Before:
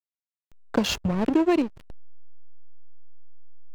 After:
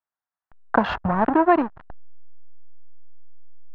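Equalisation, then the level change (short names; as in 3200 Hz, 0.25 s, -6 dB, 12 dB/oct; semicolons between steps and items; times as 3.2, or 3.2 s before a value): air absorption 420 m; band shelf 1100 Hz +14 dB; +1.0 dB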